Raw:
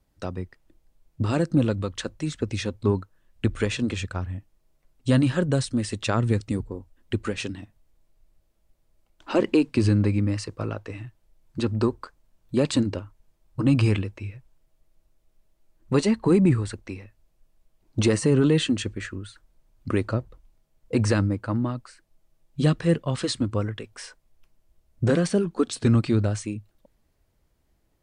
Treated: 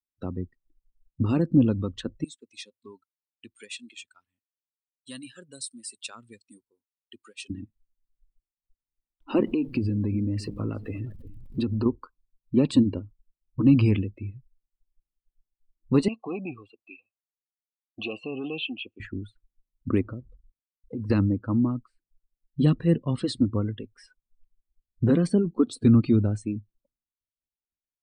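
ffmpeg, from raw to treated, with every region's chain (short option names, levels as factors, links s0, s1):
-filter_complex "[0:a]asettb=1/sr,asplit=3[s0][s1][s2];[s0]atrim=end=2.244[s3];[s1]atrim=start=2.24:end=7.5,asetpts=PTS-STARTPTS,afade=t=in:d=0.004:c=qsin,afade=t=out:st=5.256:d=0.004:c=qsin,acontrast=22,aderivative[s4];[s2]atrim=start=7.496[s5];[s3][s4]acrossfade=d=0.004:c1=hsin:c2=qsin[s6];[s6][s5]acrossfade=d=0.004:c1=qsin:c2=hsin,asettb=1/sr,asplit=3[s7][s8][s9];[s7]atrim=end=9.444[s10];[s8]atrim=start=9.44:end=11.86,asetpts=PTS-STARTPTS,afade=t=in:d=0.004:c=qsin,afade=t=out:st=2.416:d=0.004:c=qsin,aeval=exprs='val(0)+0.5*0.0168*sgn(val(0))':c=same,acompressor=threshold=0.0708:ratio=5:attack=3.2:release=140:knee=1:detection=peak,aecho=1:1:355:0.168,atrim=end_sample=106722[s11];[s9]atrim=start=11.856[s12];[s10][s11]acrossfade=d=0.004:c1=hsin:c2=qsin[s13];[s13][s12]acrossfade=d=0.004:c1=qsin:c2=hsin,asettb=1/sr,asplit=3[s14][s15][s16];[s14]atrim=end=16.084[s17];[s15]atrim=start=16.08:end=19,asetpts=PTS-STARTPTS,afade=t=in:d=0.004:c=qsin,afade=t=out:st=2.916:d=0.004:c=qsin,highshelf=f=2300:t=q:w=3:g=6.5,acontrast=76,asplit=3[s18][s19][s20];[s18]bandpass=f=730:t=q:w=8,volume=1[s21];[s19]bandpass=f=1090:t=q:w=8,volume=0.501[s22];[s20]bandpass=f=2440:t=q:w=8,volume=0.355[s23];[s21][s22][s23]amix=inputs=3:normalize=0[s24];[s16]atrim=start=18.996[s25];[s17][s24]acrossfade=d=0.004:c1=hsin:c2=qsin[s26];[s26][s25]acrossfade=d=0.004:c1=qsin:c2=hsin,asettb=1/sr,asplit=3[s27][s28][s29];[s27]atrim=end=20.014[s30];[s28]atrim=start=20.01:end=21.1,asetpts=PTS-STARTPTS,afade=t=in:d=0.004:c=qsin,afade=t=out:st=1.086:d=0.004:c=qsin,acompressor=threshold=0.0316:ratio=8:attack=3.2:release=140:knee=1:detection=peak,highshelf=f=3600:g=-12,acrusher=bits=8:mix=0:aa=0.5[s31];[s29]atrim=start=21.096[s32];[s30][s31]acrossfade=d=0.004:c1=hsin:c2=qsin[s33];[s33][s32]acrossfade=d=0.004:c1=qsin:c2=hsin,agate=range=0.0224:threshold=0.00141:ratio=3:detection=peak,afftdn=nr=24:nf=-37,equalizer=f=250:t=o:w=0.67:g=6,equalizer=f=630:t=o:w=0.67:g=-7,equalizer=f=1600:t=o:w=0.67:g=-7,equalizer=f=6300:t=o:w=0.67:g=-10,volume=0.891"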